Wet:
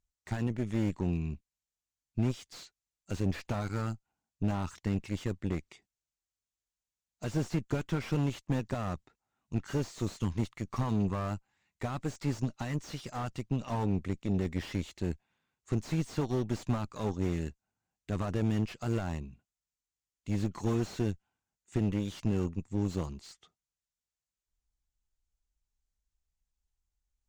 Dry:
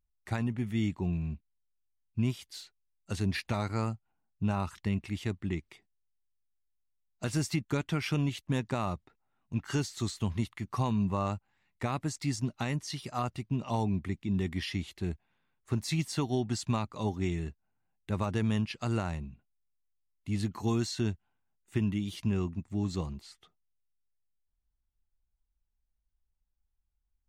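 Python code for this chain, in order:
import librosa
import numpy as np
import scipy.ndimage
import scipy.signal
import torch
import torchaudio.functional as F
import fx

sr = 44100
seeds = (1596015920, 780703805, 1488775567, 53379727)

y = fx.cheby_harmonics(x, sr, harmonics=(3, 6), levels_db=(-19, -19), full_scale_db=-17.5)
y = fx.lowpass_res(y, sr, hz=7100.0, q=2.8)
y = fx.slew_limit(y, sr, full_power_hz=18.0)
y = y * 10.0 ** (1.5 / 20.0)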